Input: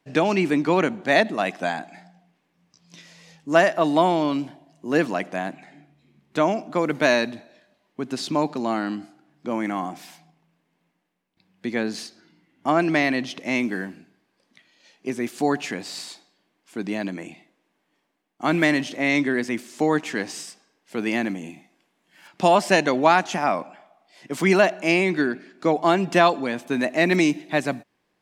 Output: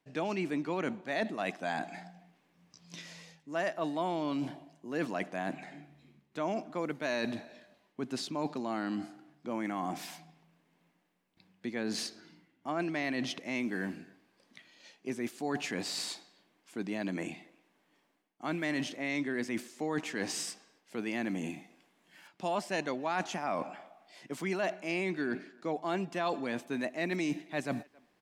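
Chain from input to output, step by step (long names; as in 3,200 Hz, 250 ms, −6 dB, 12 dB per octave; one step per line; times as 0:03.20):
reversed playback
downward compressor 4 to 1, threshold −33 dBFS, peak gain reduction 18.5 dB
reversed playback
far-end echo of a speakerphone 270 ms, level −25 dB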